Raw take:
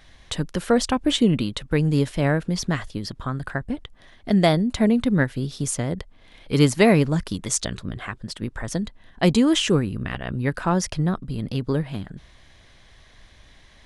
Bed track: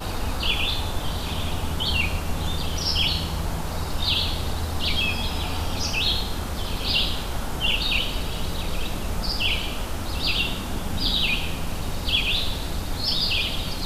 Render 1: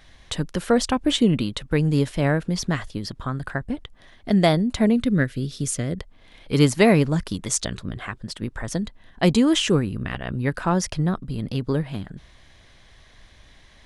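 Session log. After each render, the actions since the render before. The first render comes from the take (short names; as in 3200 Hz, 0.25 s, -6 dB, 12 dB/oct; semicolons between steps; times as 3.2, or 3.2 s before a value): 4.96–5.99 bell 880 Hz -14.5 dB 0.51 oct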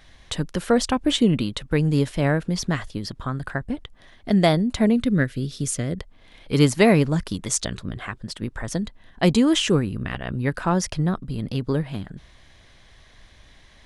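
nothing audible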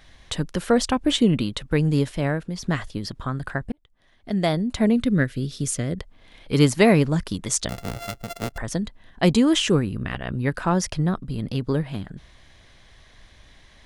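1.9–2.63 fade out, to -7.5 dB; 3.72–4.95 fade in linear; 7.69–8.58 sample sorter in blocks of 64 samples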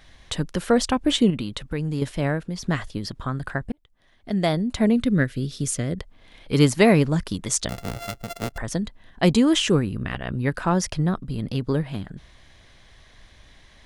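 1.3–2.02 compressor 2:1, threshold -27 dBFS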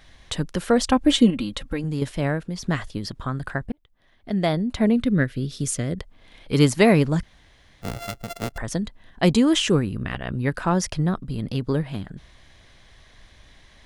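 0.88–1.84 comb 3.7 ms; 3.66–5.5 bell 7800 Hz -6 dB 1.2 oct; 7.23–7.82 room tone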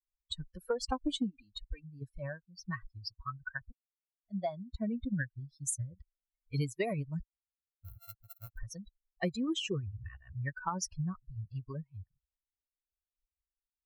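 per-bin expansion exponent 3; compressor 10:1, threshold -30 dBFS, peak gain reduction 17 dB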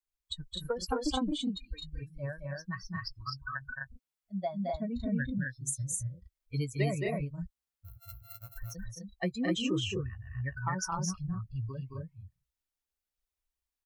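doubler 16 ms -13.5 dB; loudspeakers at several distances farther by 75 m -4 dB, 87 m -2 dB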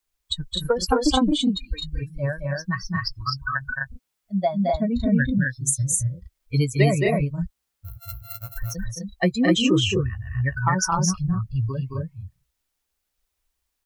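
gain +12 dB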